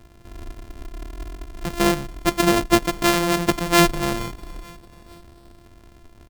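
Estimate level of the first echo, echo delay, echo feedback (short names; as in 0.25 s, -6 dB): -22.5 dB, 0.449 s, 51%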